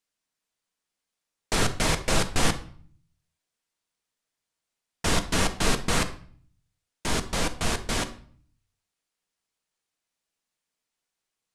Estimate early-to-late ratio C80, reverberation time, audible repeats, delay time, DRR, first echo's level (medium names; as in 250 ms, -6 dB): 18.0 dB, 0.50 s, no echo, no echo, 8.0 dB, no echo